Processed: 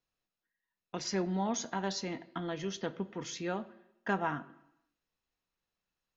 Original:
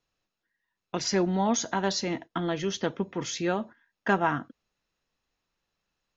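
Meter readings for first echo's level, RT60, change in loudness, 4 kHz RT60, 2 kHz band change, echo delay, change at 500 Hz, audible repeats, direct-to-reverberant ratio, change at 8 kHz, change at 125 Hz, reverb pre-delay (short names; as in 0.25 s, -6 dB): none, 0.85 s, -7.5 dB, 0.90 s, -7.5 dB, none, -8.0 dB, none, 12.0 dB, n/a, -6.5 dB, 3 ms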